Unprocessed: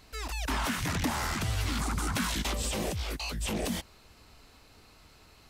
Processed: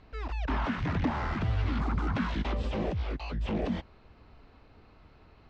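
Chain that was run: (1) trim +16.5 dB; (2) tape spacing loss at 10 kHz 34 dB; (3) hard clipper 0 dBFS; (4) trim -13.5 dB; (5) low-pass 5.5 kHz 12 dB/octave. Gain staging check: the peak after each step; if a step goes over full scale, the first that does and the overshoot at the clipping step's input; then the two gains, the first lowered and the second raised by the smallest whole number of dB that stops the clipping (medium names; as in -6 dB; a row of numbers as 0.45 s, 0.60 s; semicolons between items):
-1.5 dBFS, -5.0 dBFS, -5.0 dBFS, -18.5 dBFS, -18.5 dBFS; nothing clips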